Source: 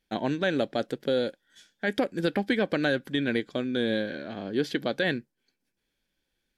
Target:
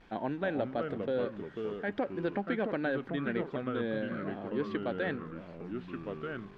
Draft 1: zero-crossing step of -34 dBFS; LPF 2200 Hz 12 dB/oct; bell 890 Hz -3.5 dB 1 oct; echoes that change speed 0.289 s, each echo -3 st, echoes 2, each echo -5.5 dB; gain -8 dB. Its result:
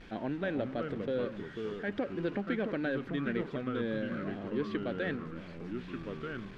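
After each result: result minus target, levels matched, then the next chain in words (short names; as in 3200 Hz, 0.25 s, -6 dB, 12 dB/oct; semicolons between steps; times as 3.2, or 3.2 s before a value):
zero-crossing step: distortion +8 dB; 1000 Hz band -3.0 dB
zero-crossing step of -42.5 dBFS; LPF 2200 Hz 12 dB/oct; bell 890 Hz -3.5 dB 1 oct; echoes that change speed 0.289 s, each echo -3 st, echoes 2, each echo -5.5 dB; gain -8 dB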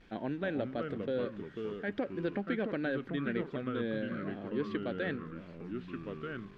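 1000 Hz band -3.5 dB
zero-crossing step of -42.5 dBFS; LPF 2200 Hz 12 dB/oct; bell 890 Hz +4.5 dB 1 oct; echoes that change speed 0.289 s, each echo -3 st, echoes 2, each echo -5.5 dB; gain -8 dB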